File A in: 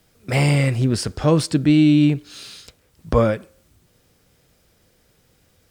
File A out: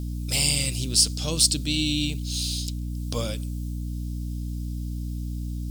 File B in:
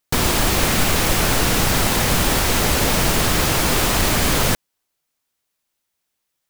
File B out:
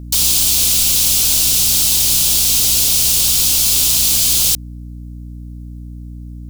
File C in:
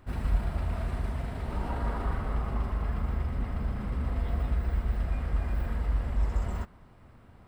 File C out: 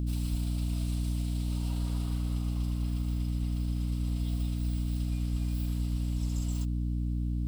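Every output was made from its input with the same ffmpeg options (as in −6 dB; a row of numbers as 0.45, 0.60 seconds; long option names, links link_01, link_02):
-af "aexciter=amount=10.9:drive=7.8:freq=2800,aeval=exprs='val(0)+0.2*(sin(2*PI*60*n/s)+sin(2*PI*2*60*n/s)/2+sin(2*PI*3*60*n/s)/3+sin(2*PI*4*60*n/s)/4+sin(2*PI*5*60*n/s)/5)':channel_layout=same,volume=-15dB"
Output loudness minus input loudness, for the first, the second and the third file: −7.0, +7.0, −0.5 LU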